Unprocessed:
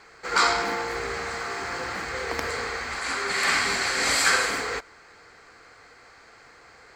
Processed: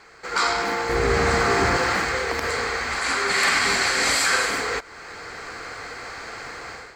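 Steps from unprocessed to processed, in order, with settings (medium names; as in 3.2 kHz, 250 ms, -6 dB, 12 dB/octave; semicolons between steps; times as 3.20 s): in parallel at +0.5 dB: compression, threshold -37 dBFS, peak gain reduction 19 dB; 0.89–1.77 s: on the sum: bass shelf 430 Hz +11 dB; level rider gain up to 14 dB; loudness maximiser +4 dB; trim -8.5 dB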